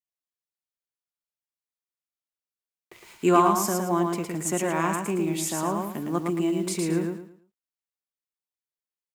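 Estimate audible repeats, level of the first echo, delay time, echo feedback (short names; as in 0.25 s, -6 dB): 3, -4.0 dB, 0.111 s, 29%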